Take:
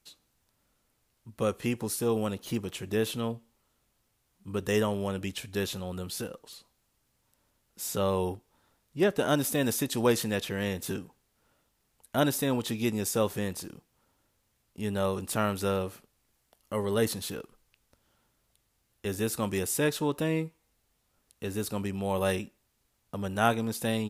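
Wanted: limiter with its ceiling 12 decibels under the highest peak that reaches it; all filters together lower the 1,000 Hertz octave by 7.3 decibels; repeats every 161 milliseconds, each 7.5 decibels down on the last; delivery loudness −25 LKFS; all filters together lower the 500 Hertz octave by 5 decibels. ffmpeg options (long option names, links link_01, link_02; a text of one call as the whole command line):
ffmpeg -i in.wav -af "equalizer=frequency=500:width_type=o:gain=-4,equalizer=frequency=1000:width_type=o:gain=-9,alimiter=level_in=2.5dB:limit=-24dB:level=0:latency=1,volume=-2.5dB,aecho=1:1:161|322|483|644|805:0.422|0.177|0.0744|0.0312|0.0131,volume=11dB" out.wav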